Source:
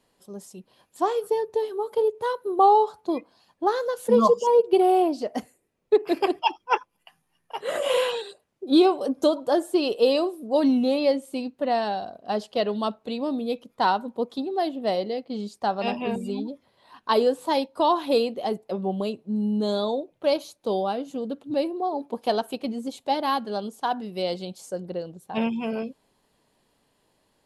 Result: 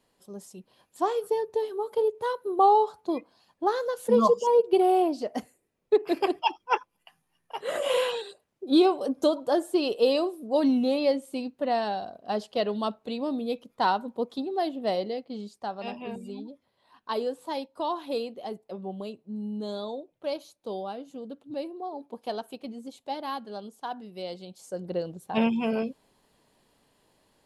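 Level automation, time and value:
0:15.06 −2.5 dB
0:15.70 −9 dB
0:24.47 −9 dB
0:24.98 +1.5 dB

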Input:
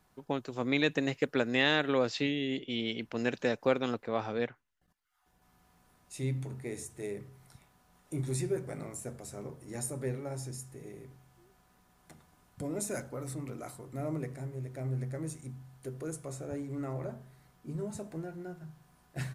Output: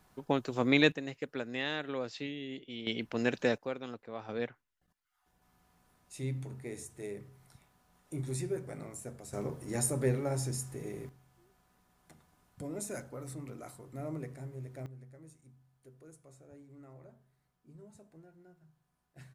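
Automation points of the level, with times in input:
+3.5 dB
from 0:00.92 −8.5 dB
from 0:02.87 +1 dB
from 0:03.58 −10 dB
from 0:04.29 −3 dB
from 0:09.33 +5.5 dB
from 0:11.09 −4 dB
from 0:14.86 −16.5 dB

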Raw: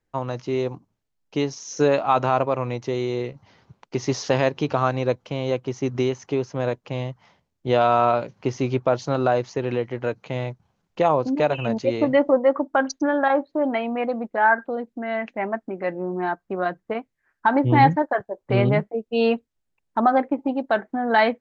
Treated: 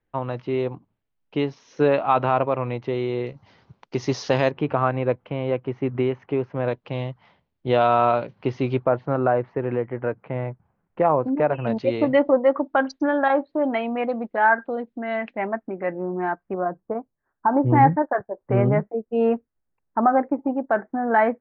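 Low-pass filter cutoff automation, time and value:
low-pass filter 24 dB per octave
3,400 Hz
from 0:03.27 5,500 Hz
from 0:04.51 2,600 Hz
from 0:06.68 4,000 Hz
from 0:08.84 2,000 Hz
from 0:11.67 4,100 Hz
from 0:15.47 2,400 Hz
from 0:16.54 1,200 Hz
from 0:17.66 1,800 Hz

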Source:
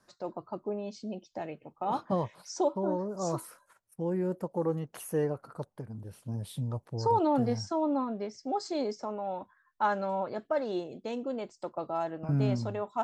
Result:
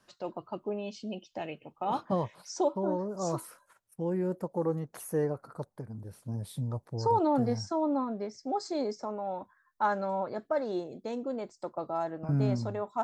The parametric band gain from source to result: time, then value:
parametric band 2,900 Hz 0.45 octaves
0:01.63 +12 dB
0:02.11 +1 dB
0:04.08 +1 dB
0:04.76 −8.5 dB

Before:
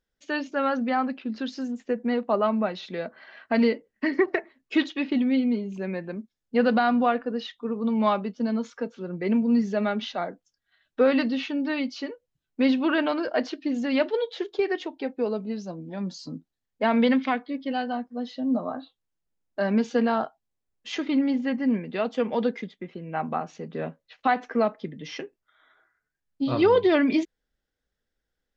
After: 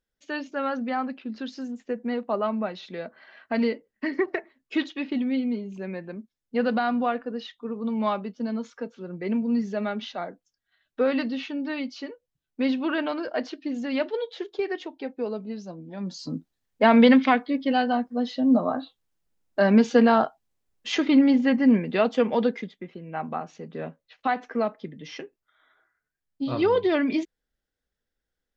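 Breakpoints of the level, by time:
0:15.96 −3 dB
0:16.36 +5.5 dB
0:21.97 +5.5 dB
0:23.01 −2.5 dB

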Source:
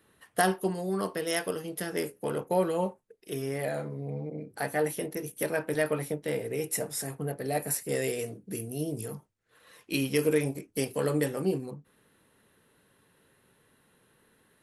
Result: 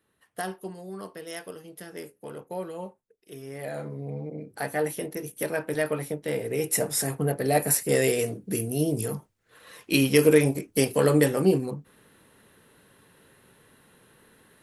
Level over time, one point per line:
0:03.43 −8 dB
0:03.87 +1 dB
0:06.18 +1 dB
0:06.94 +7.5 dB

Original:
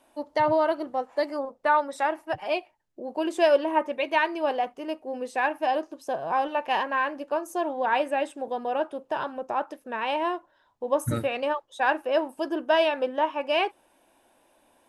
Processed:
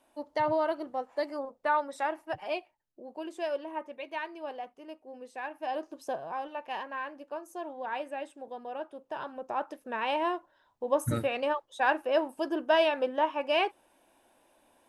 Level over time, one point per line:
0:02.44 −5.5 dB
0:03.42 −13 dB
0:05.49 −13 dB
0:06.03 −2 dB
0:06.34 −11 dB
0:08.88 −11 dB
0:09.81 −2.5 dB

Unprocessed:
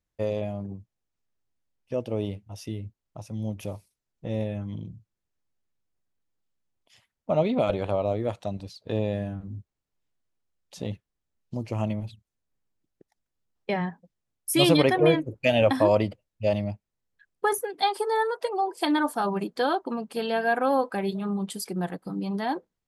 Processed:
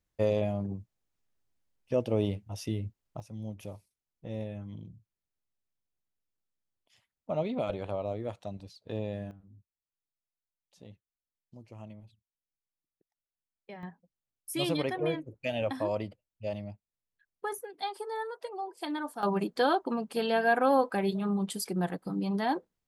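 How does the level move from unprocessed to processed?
+1 dB
from 0:03.20 −8 dB
from 0:09.31 −18.5 dB
from 0:13.83 −11 dB
from 0:19.23 −1 dB

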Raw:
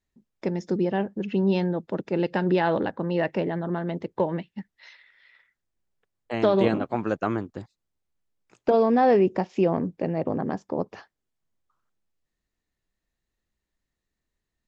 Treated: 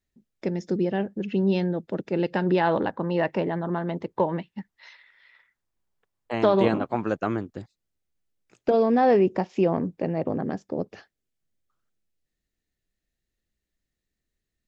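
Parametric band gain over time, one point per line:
parametric band 990 Hz 0.68 octaves
0:01.88 −6 dB
0:02.82 +4.5 dB
0:06.77 +4.5 dB
0:07.56 −6.5 dB
0:08.69 −6.5 dB
0:09.11 0 dB
0:10.17 0 dB
0:10.73 −11.5 dB

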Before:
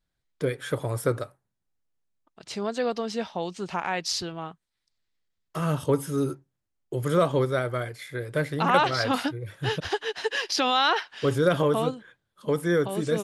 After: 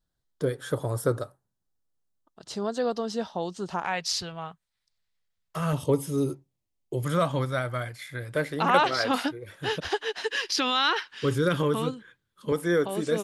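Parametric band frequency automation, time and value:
parametric band −12.5 dB 0.56 octaves
2,300 Hz
from 0:03.85 310 Hz
from 0:05.73 1,500 Hz
from 0:07.05 410 Hz
from 0:08.35 120 Hz
from 0:10.23 680 Hz
from 0:12.52 120 Hz

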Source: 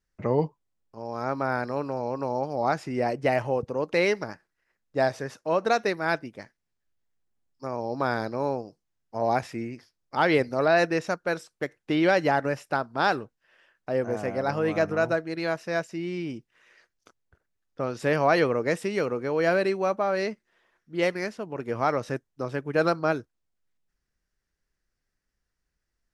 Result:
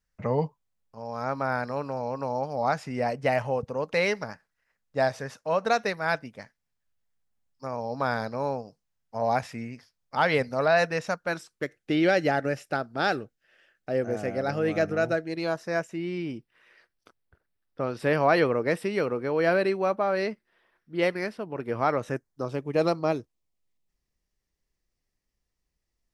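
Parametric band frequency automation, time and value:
parametric band −14 dB 0.32 octaves
0:11.19 340 Hz
0:11.76 1,000 Hz
0:15.19 1,000 Hz
0:16.05 6,700 Hz
0:21.90 6,700 Hz
0:22.61 1,500 Hz

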